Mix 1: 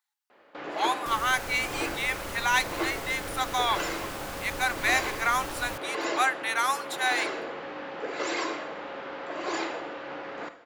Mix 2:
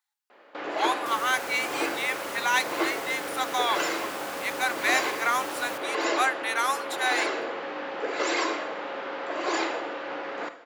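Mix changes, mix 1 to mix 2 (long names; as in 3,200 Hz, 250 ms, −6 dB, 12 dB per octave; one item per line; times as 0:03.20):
first sound +4.0 dB
second sound: send +11.0 dB
master: add high-pass filter 250 Hz 12 dB per octave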